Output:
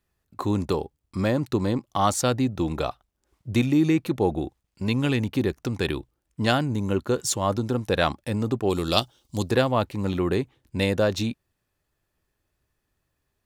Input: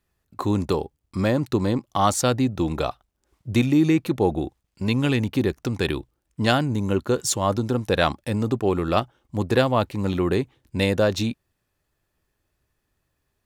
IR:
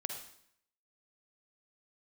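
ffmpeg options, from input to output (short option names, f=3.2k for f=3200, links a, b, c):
-filter_complex "[0:a]asplit=3[a][b][c];[a]afade=t=out:st=8.69:d=0.02[d];[b]highshelf=f=2.8k:t=q:w=1.5:g=13,afade=t=in:st=8.69:d=0.02,afade=t=out:st=9.49:d=0.02[e];[c]afade=t=in:st=9.49:d=0.02[f];[d][e][f]amix=inputs=3:normalize=0,volume=-2dB"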